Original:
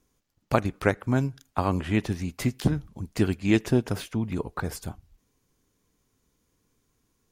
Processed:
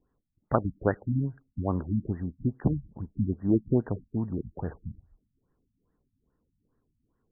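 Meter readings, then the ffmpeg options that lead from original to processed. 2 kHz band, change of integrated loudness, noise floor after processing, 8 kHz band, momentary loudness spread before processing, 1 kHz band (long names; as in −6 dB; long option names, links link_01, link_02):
below −10 dB, −3.0 dB, −79 dBFS, below −35 dB, 10 LU, −5.0 dB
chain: -af "afftfilt=real='re*lt(b*sr/1024,250*pow(2000/250,0.5+0.5*sin(2*PI*2.4*pts/sr)))':imag='im*lt(b*sr/1024,250*pow(2000/250,0.5+0.5*sin(2*PI*2.4*pts/sr)))':win_size=1024:overlap=0.75,volume=-2dB"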